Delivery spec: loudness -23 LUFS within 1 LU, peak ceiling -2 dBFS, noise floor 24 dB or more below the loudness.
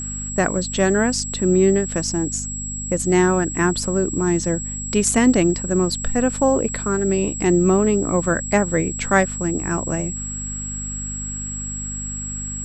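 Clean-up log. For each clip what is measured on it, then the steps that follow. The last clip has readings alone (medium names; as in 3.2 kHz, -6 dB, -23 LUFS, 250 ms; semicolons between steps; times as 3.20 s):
hum 50 Hz; highest harmonic 250 Hz; hum level -30 dBFS; steady tone 7.7 kHz; tone level -28 dBFS; loudness -20.5 LUFS; peak level -3.0 dBFS; loudness target -23.0 LUFS
-> de-hum 50 Hz, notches 5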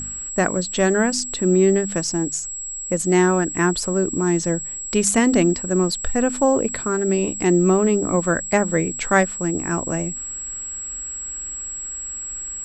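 hum not found; steady tone 7.7 kHz; tone level -28 dBFS
-> band-stop 7.7 kHz, Q 30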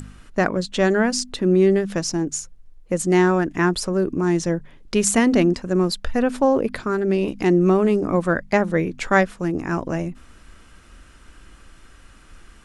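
steady tone not found; loudness -20.5 LUFS; peak level -3.0 dBFS; loudness target -23.0 LUFS
-> trim -2.5 dB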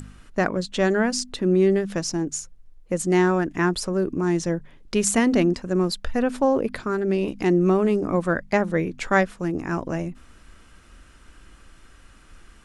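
loudness -23.0 LUFS; peak level -5.5 dBFS; noise floor -51 dBFS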